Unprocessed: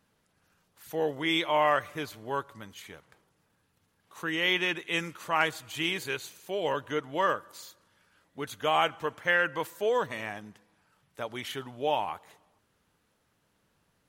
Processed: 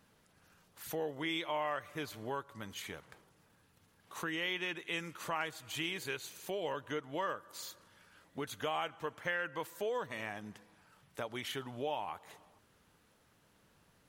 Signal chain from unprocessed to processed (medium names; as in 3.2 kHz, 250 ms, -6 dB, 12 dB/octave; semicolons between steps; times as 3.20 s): compression 2.5:1, threshold -44 dBFS, peak gain reduction 16 dB; trim +3.5 dB